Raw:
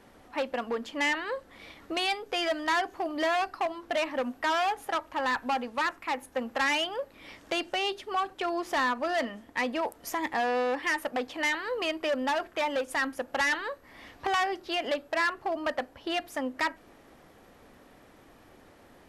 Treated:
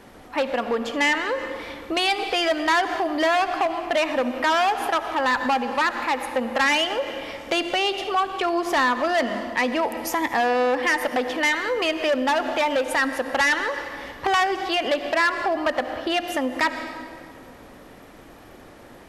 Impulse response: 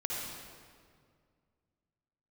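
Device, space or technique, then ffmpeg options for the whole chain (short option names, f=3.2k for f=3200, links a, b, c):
ducked reverb: -filter_complex "[0:a]asplit=3[a][b][c];[1:a]atrim=start_sample=2205[d];[b][d]afir=irnorm=-1:irlink=0[e];[c]apad=whole_len=841602[f];[e][f]sidechaincompress=threshold=-36dB:ratio=8:attack=11:release=120,volume=-7dB[g];[a][g]amix=inputs=2:normalize=0,volume=6dB"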